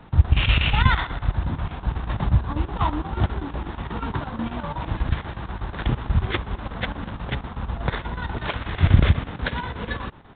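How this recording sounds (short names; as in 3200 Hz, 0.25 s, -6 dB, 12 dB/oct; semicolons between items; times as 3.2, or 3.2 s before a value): a buzz of ramps at a fixed pitch in blocks of 8 samples; chopped level 8.2 Hz, depth 65%, duty 75%; A-law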